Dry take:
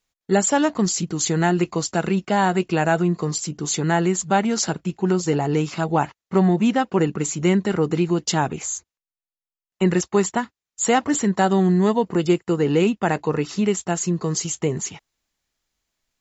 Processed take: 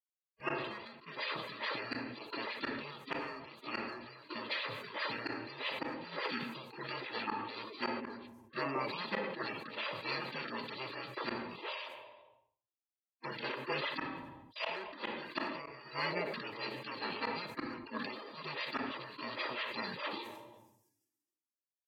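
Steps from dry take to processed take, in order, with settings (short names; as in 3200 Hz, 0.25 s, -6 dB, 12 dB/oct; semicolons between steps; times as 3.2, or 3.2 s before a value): HPF 740 Hz 24 dB/oct; gate with hold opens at -41 dBFS; spectral gate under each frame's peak -20 dB weak; high shelf 2200 Hz -9 dB; formant shift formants -3 st; in parallel at -10 dB: hard clip -39.5 dBFS, distortion -10 dB; on the sum: flipped gate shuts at -34 dBFS, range -40 dB; notch comb 1000 Hz; on a send at -17 dB: air absorption 77 m + reverb RT60 0.55 s, pre-delay 4 ms; on the sum: speed mistake 45 rpm record played at 33 rpm; sustainer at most 42 dB/s; gain +11 dB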